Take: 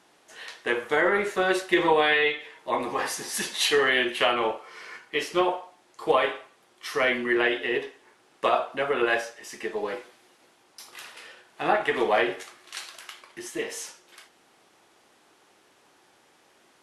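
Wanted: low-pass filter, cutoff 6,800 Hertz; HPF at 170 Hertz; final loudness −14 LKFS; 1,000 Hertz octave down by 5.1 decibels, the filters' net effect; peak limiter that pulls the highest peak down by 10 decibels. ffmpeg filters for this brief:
ffmpeg -i in.wav -af "highpass=170,lowpass=6800,equalizer=frequency=1000:width_type=o:gain=-7,volume=16.5dB,alimiter=limit=-2.5dB:level=0:latency=1" out.wav

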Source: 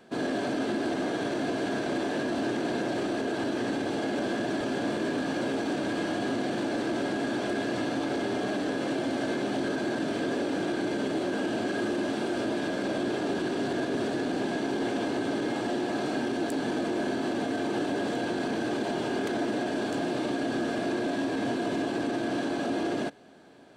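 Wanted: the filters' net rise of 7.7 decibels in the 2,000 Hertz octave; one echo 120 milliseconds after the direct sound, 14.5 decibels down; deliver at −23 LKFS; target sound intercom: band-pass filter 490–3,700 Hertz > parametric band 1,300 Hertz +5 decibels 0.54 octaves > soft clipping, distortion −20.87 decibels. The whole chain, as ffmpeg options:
ffmpeg -i in.wav -af "highpass=490,lowpass=3700,equalizer=frequency=1300:width_type=o:width=0.54:gain=5,equalizer=frequency=2000:width_type=o:gain=8,aecho=1:1:120:0.188,asoftclip=threshold=-23dB,volume=8.5dB" out.wav

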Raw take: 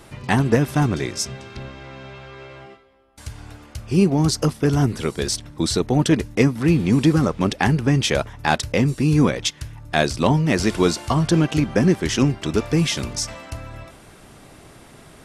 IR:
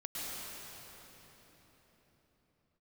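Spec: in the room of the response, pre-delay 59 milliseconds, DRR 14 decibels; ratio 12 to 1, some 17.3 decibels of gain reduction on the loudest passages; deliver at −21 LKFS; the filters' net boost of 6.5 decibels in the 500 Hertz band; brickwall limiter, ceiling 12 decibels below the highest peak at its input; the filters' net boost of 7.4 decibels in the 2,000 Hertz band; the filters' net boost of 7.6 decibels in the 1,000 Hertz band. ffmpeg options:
-filter_complex "[0:a]equalizer=frequency=500:width_type=o:gain=6.5,equalizer=frequency=1000:width_type=o:gain=6,equalizer=frequency=2000:width_type=o:gain=7,acompressor=threshold=-24dB:ratio=12,alimiter=limit=-18dB:level=0:latency=1,asplit=2[link_01][link_02];[1:a]atrim=start_sample=2205,adelay=59[link_03];[link_02][link_03]afir=irnorm=-1:irlink=0,volume=-16.5dB[link_04];[link_01][link_04]amix=inputs=2:normalize=0,volume=10.5dB"

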